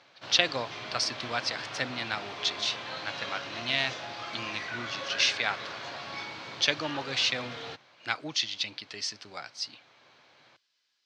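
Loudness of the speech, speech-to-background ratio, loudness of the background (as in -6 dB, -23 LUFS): -30.5 LUFS, 7.5 dB, -38.0 LUFS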